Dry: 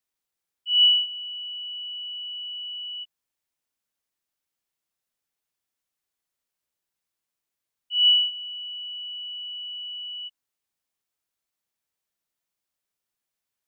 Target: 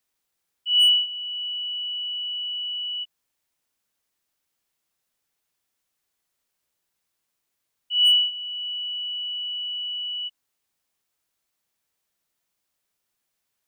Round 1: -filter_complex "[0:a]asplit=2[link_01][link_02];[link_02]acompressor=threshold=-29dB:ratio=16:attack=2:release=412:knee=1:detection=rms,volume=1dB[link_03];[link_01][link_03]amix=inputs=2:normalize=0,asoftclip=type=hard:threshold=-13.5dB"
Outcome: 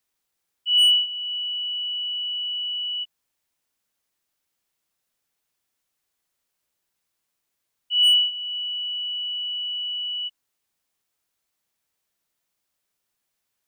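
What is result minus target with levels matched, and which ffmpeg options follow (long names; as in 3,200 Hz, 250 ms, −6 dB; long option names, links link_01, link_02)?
downward compressor: peak gain reduction −6 dB
-filter_complex "[0:a]asplit=2[link_01][link_02];[link_02]acompressor=threshold=-35.5dB:ratio=16:attack=2:release=412:knee=1:detection=rms,volume=1dB[link_03];[link_01][link_03]amix=inputs=2:normalize=0,asoftclip=type=hard:threshold=-13.5dB"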